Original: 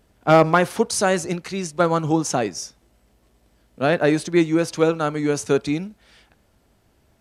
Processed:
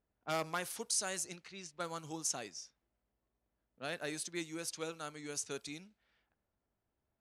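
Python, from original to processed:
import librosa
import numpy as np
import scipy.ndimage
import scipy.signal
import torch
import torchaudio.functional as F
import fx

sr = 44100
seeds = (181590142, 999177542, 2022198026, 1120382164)

y = fx.env_lowpass(x, sr, base_hz=1200.0, full_db=-16.5)
y = F.preemphasis(torch.from_numpy(y), 0.9).numpy()
y = y * librosa.db_to_amplitude(-6.0)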